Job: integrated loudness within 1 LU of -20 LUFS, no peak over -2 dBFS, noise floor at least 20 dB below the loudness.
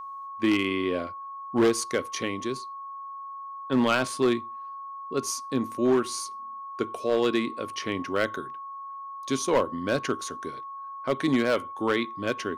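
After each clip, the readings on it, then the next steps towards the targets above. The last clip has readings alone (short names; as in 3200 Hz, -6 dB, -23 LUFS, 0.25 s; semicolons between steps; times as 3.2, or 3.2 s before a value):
clipped 0.7%; flat tops at -16.0 dBFS; steady tone 1100 Hz; tone level -36 dBFS; loudness -27.5 LUFS; peak -16.0 dBFS; loudness target -20.0 LUFS
-> clip repair -16 dBFS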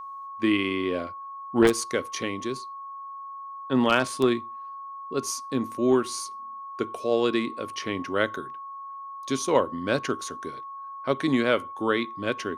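clipped 0.0%; steady tone 1100 Hz; tone level -36 dBFS
-> notch 1100 Hz, Q 30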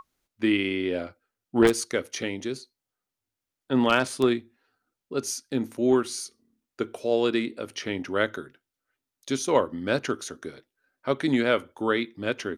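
steady tone none; loudness -26.5 LUFS; peak -7.0 dBFS; loudness target -20.0 LUFS
-> gain +6.5 dB; limiter -2 dBFS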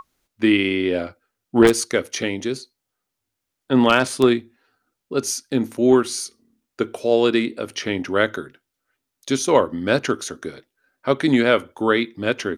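loudness -20.5 LUFS; peak -2.0 dBFS; noise floor -81 dBFS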